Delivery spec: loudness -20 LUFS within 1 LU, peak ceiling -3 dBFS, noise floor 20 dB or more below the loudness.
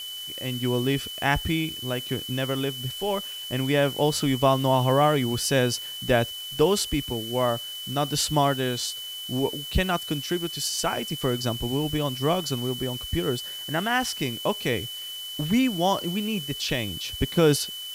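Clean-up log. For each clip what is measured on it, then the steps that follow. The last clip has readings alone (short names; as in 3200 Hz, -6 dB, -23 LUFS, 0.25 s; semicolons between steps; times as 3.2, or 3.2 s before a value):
steady tone 3000 Hz; tone level -34 dBFS; noise floor -36 dBFS; noise floor target -46 dBFS; loudness -25.5 LUFS; peak -8.0 dBFS; loudness target -20.0 LUFS
-> notch 3000 Hz, Q 30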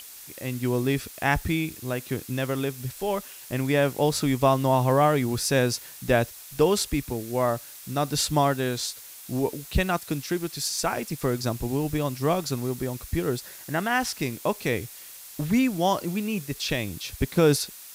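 steady tone none; noise floor -44 dBFS; noise floor target -46 dBFS
-> denoiser 6 dB, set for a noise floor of -44 dBFS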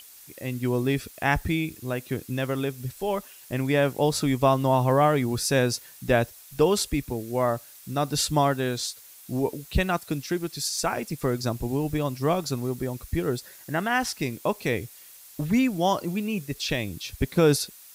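noise floor -49 dBFS; loudness -26.0 LUFS; peak -8.0 dBFS; loudness target -20.0 LUFS
-> gain +6 dB; limiter -3 dBFS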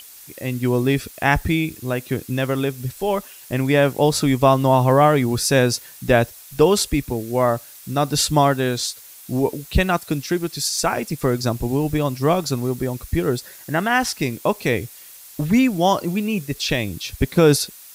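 loudness -20.5 LUFS; peak -3.0 dBFS; noise floor -43 dBFS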